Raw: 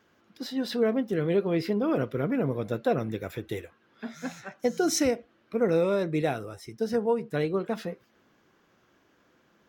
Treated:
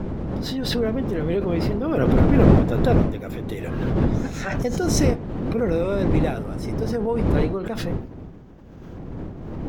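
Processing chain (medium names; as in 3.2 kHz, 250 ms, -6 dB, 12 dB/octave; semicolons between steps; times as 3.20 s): wind noise 250 Hz -25 dBFS; swell ahead of each attack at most 29 dB/s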